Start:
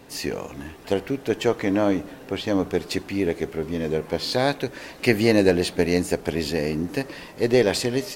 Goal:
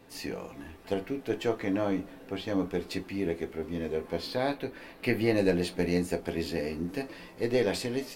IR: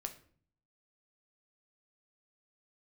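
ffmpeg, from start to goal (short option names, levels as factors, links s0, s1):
-filter_complex "[0:a]asetnsamples=n=441:p=0,asendcmd='4.27 equalizer g -11.5;5.36 equalizer g -3',equalizer=f=6700:t=o:w=1:g=-3.5[s0];[1:a]atrim=start_sample=2205,afade=t=out:st=0.15:d=0.01,atrim=end_sample=7056,asetrate=83790,aresample=44100[s1];[s0][s1]afir=irnorm=-1:irlink=0"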